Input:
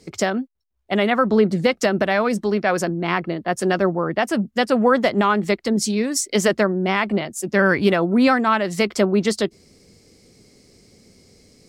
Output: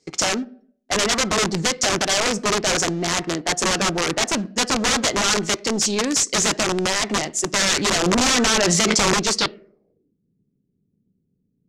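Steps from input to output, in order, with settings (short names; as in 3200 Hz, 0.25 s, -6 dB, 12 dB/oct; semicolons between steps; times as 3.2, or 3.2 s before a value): low shelf 120 Hz -10.5 dB; sample leveller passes 3; reverb RT60 0.55 s, pre-delay 3 ms, DRR 11 dB; wrapped overs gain 8 dB; low-pass sweep 6700 Hz -> 190 Hz, 9.35–10.15; 8.06–9.14 fast leveller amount 100%; gain -8.5 dB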